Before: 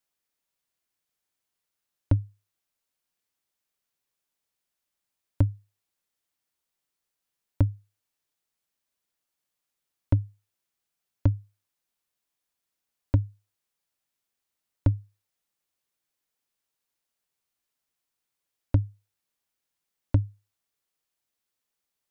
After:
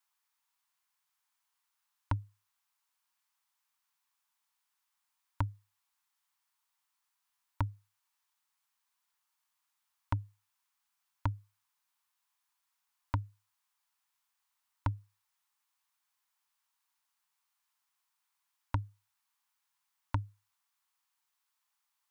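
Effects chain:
low shelf with overshoot 680 Hz −12 dB, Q 3
level +1 dB

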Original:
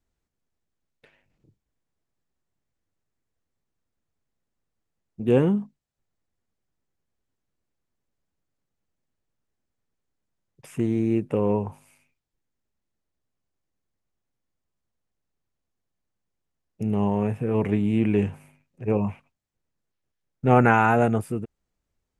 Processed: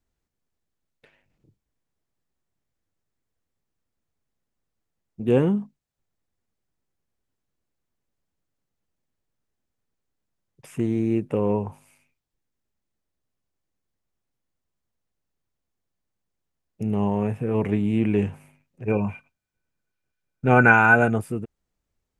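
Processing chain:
0:18.88–0:21.10: hollow resonant body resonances 1,500/2,400 Hz, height 18 dB, ringing for 85 ms

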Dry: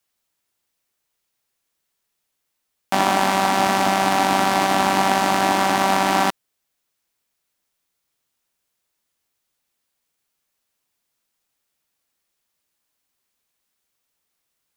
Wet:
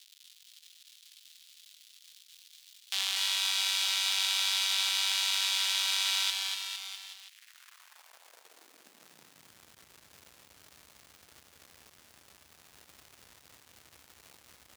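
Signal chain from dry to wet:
surface crackle 200 per second −33 dBFS
high-pass filter sweep 3,500 Hz → 68 Hz, 0:07.01–0:09.72
bouncing-ball delay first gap 240 ms, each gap 0.9×, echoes 5
level −7 dB

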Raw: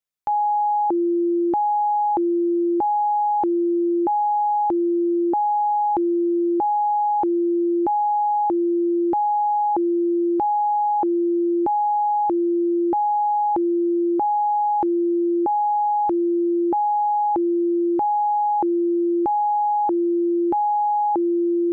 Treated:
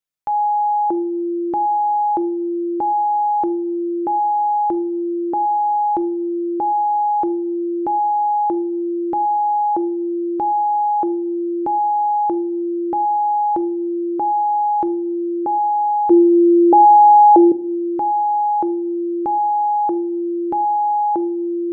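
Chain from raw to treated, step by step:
0:16.10–0:17.52: flat-topped bell 520 Hz +11 dB
convolution reverb RT60 0.55 s, pre-delay 6 ms, DRR 11 dB

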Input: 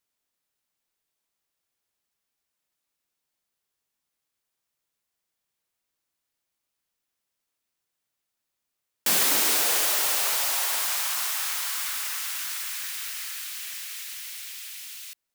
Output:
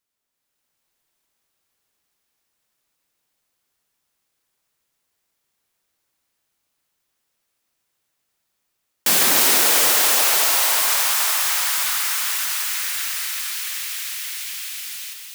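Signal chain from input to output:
automatic gain control gain up to 6.5 dB
delay that swaps between a low-pass and a high-pass 148 ms, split 2,200 Hz, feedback 73%, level −2.5 dB

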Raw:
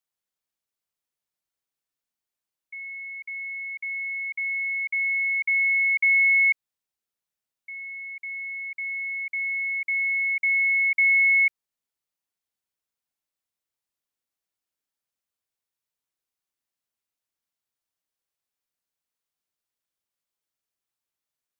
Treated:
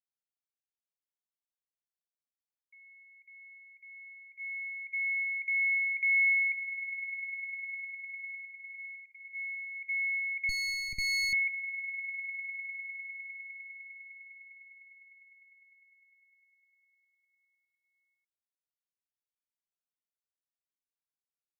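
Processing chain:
noise gate −28 dBFS, range −12 dB
echo that builds up and dies away 101 ms, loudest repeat 8, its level −13.5 dB
0:10.49–0:11.33: windowed peak hold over 9 samples
level −7.5 dB

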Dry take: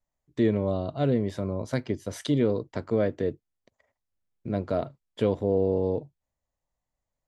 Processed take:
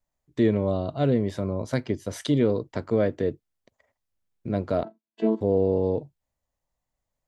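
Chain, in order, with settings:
0:04.83–0:05.41: channel vocoder with a chord as carrier bare fifth, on A3
level +2 dB

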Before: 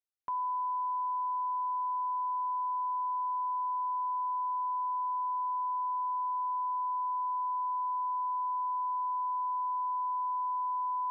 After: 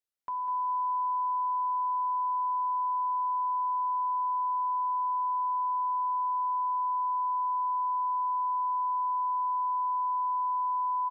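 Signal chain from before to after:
mains-hum notches 50/100/150/200/250/300/350/400 Hz
repeating echo 200 ms, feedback 27%, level −9 dB

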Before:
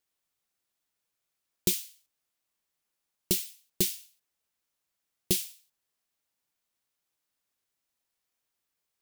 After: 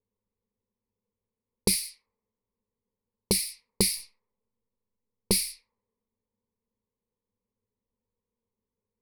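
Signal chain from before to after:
0:03.96–0:05.33: gain on one half-wave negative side −3 dB
low-pass that shuts in the quiet parts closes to 390 Hz, open at −30 dBFS
EQ curve with evenly spaced ripples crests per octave 0.9, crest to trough 17 dB
downward compressor 2 to 1, threshold −29 dBFS, peak gain reduction 6 dB
boost into a limiter +17.5 dB
level −9 dB

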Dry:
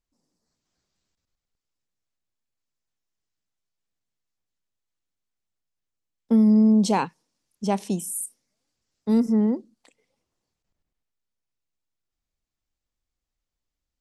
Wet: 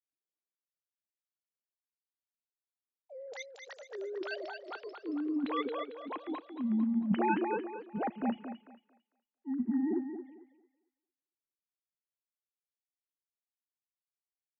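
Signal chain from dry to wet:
three sine waves on the formant tracks
dynamic equaliser 1,800 Hz, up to +6 dB, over −47 dBFS, Q 1.5
reversed playback
downward compressor 5 to 1, threshold −32 dBFS, peak gain reduction 17.5 dB
reversed playback
pitch vibrato 0.47 Hz 5.6 cents
delay with pitch and tempo change per echo 106 ms, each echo +5 semitones, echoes 3
on a send: feedback echo with a high-pass in the loop 216 ms, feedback 48%, high-pass 240 Hz, level −4 dB
on the sum: wrong playback speed 25 fps video run at 24 fps
multiband upward and downward expander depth 70%

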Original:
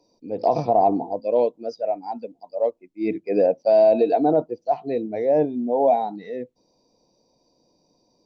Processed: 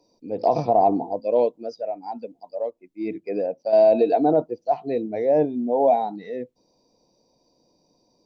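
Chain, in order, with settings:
0:01.60–0:03.73: downward compressor 2 to 1, threshold −28 dBFS, peak gain reduction 8 dB

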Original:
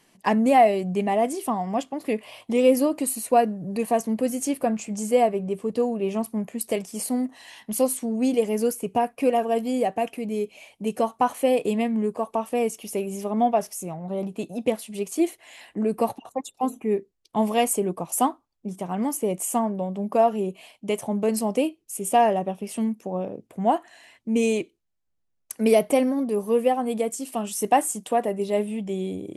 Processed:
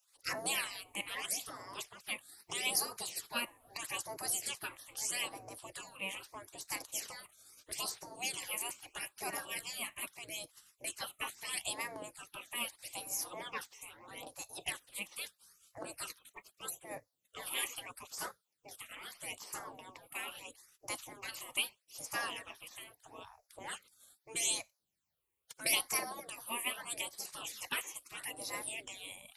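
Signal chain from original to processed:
all-pass phaser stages 8, 0.78 Hz, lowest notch 190–3,100 Hz
gate on every frequency bin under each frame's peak −25 dB weak
spectral tilt +1.5 dB per octave
level +4 dB

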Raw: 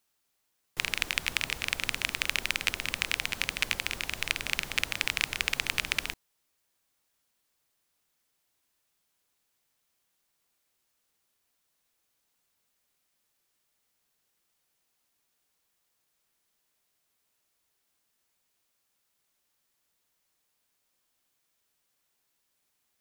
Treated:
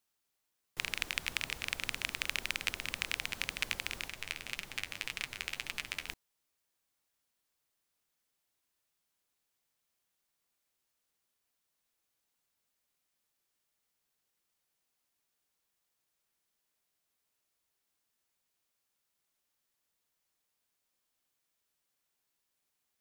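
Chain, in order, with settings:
0:04.08–0:06.09: flanger 1.8 Hz, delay 4.4 ms, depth 8.9 ms, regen +46%
level −6 dB

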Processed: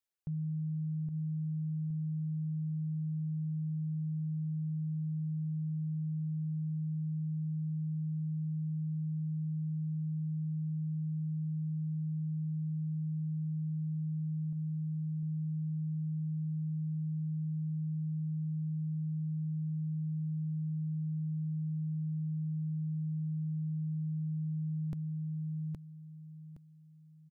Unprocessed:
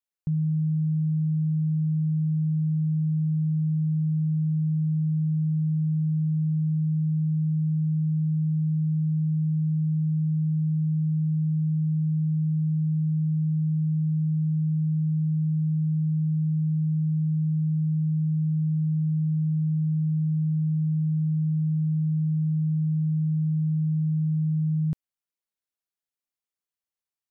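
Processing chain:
reverb reduction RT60 0.97 s
repeating echo 817 ms, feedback 27%, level −7 dB
0:14.52–0:15.23: dynamic equaliser 150 Hz, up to −4 dB, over −44 dBFS, Q 1.9
brickwall limiter −32 dBFS, peak gain reduction 11 dB

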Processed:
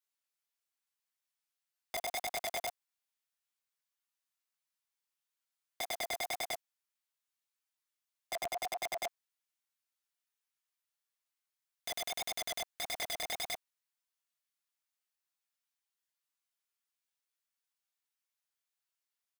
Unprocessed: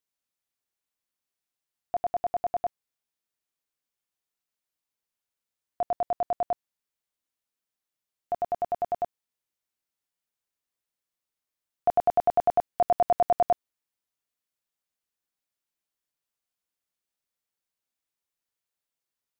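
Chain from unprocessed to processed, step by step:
high-pass filter 900 Hz 12 dB per octave
comb filter 7.2 ms, depth 61%
in parallel at +0.5 dB: brickwall limiter −25.5 dBFS, peak gain reduction 8.5 dB
on the sum: chorus effect 1.7 Hz, delay 18 ms, depth 6.8 ms
wrap-around overflow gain 25.5 dB
level −6.5 dB

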